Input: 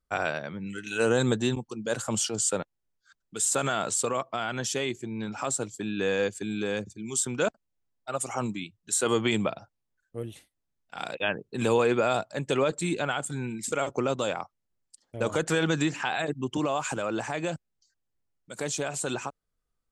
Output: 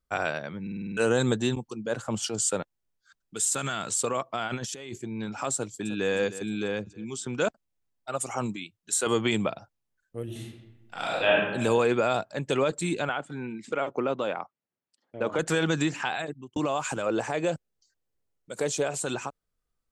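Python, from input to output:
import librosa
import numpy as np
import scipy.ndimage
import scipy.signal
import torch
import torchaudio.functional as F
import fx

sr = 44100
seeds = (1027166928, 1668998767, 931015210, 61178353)

y = fx.lowpass(x, sr, hz=2200.0, slope=6, at=(1.81, 2.22), fade=0.02)
y = fx.peak_eq(y, sr, hz=590.0, db=-8.0, octaves=1.8, at=(3.45, 3.9))
y = fx.over_compress(y, sr, threshold_db=-35.0, ratio=-0.5, at=(4.47, 4.97), fade=0.02)
y = fx.echo_throw(y, sr, start_s=5.54, length_s=0.57, ms=310, feedback_pct=45, wet_db=-13.5)
y = fx.air_absorb(y, sr, metres=110.0, at=(6.68, 7.33))
y = fx.low_shelf(y, sr, hz=210.0, db=-11.0, at=(8.56, 9.07))
y = fx.reverb_throw(y, sr, start_s=10.24, length_s=1.11, rt60_s=1.1, drr_db=-5.0)
y = fx.peak_eq(y, sr, hz=9300.0, db=-7.0, octaves=0.68, at=(12.07, 12.5))
y = fx.bandpass_edges(y, sr, low_hz=180.0, high_hz=2700.0, at=(13.09, 15.39))
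y = fx.peak_eq(y, sr, hz=470.0, db=7.0, octaves=0.77, at=(17.06, 18.97))
y = fx.edit(y, sr, fx.stutter_over(start_s=0.62, slice_s=0.05, count=7),
    fx.fade_out_span(start_s=16.06, length_s=0.5), tone=tone)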